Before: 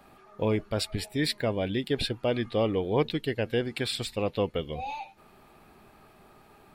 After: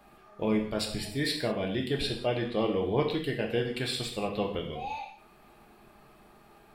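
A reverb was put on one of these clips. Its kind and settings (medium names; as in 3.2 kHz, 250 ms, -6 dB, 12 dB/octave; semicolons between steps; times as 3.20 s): gated-style reverb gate 220 ms falling, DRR 0.5 dB; trim -3.5 dB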